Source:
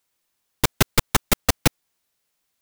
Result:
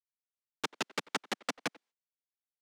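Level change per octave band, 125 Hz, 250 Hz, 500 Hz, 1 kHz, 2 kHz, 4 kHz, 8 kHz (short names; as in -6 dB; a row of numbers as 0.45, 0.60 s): -29.5, -16.5, -14.0, -12.5, -11.5, -13.5, -19.5 dB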